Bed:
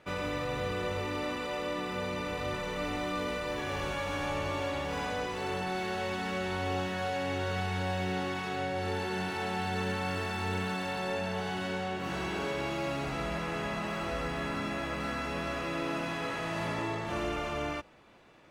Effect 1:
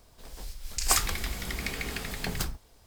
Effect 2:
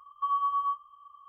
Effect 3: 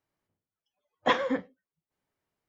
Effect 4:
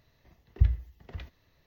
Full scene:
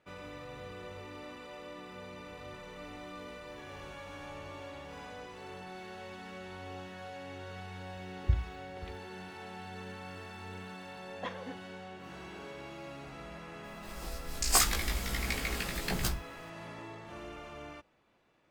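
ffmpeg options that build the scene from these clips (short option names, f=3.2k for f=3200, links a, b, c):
-filter_complex "[0:a]volume=-12dB[a];[1:a]asplit=2[b][c];[c]adelay=17,volume=-2.5dB[d];[b][d]amix=inputs=2:normalize=0[e];[4:a]atrim=end=1.66,asetpts=PTS-STARTPTS,volume=-5.5dB,afade=t=in:d=0.004:c=hsin,afade=t=out:st=1.656:d=0.004:c=hsin,adelay=7680[f];[3:a]atrim=end=2.48,asetpts=PTS-STARTPTS,volume=-16dB,afade=t=in:d=0.004:c=hsin,afade=t=out:st=2.476:d=0.004:c=hsin,adelay=10160[g];[e]atrim=end=2.86,asetpts=PTS-STARTPTS,volume=-2.5dB,afade=t=in:d=0.004:c=hsin,afade=t=out:st=2.856:d=0.004:c=hsin,adelay=601524S[h];[a][f][g][h]amix=inputs=4:normalize=0"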